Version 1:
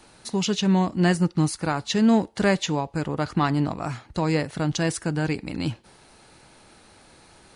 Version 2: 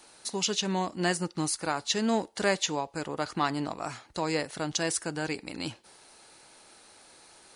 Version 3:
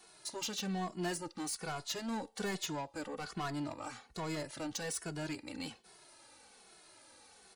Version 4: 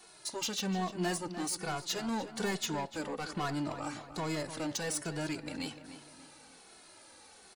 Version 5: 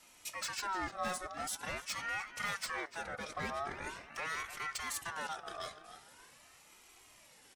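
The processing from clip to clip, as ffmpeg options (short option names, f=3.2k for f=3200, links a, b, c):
-af "bass=f=250:g=-12,treble=f=4k:g=6,volume=-3.5dB"
-filter_complex "[0:a]asoftclip=type=tanh:threshold=-28dB,asplit=2[a][b];[b]adelay=2.3,afreqshift=-1.2[c];[a][c]amix=inputs=2:normalize=1,volume=-2dB"
-filter_complex "[0:a]asplit=2[a][b];[b]adelay=298,lowpass=f=3.2k:p=1,volume=-11dB,asplit=2[c][d];[d]adelay=298,lowpass=f=3.2k:p=1,volume=0.43,asplit=2[e][f];[f]adelay=298,lowpass=f=3.2k:p=1,volume=0.43,asplit=2[g][h];[h]adelay=298,lowpass=f=3.2k:p=1,volume=0.43[i];[a][c][e][g][i]amix=inputs=5:normalize=0,volume=3.5dB"
-af "asuperstop=centerf=1900:order=4:qfactor=7.7,aeval=exprs='val(0)*sin(2*PI*1300*n/s+1300*0.3/0.44*sin(2*PI*0.44*n/s))':c=same,volume=-1.5dB"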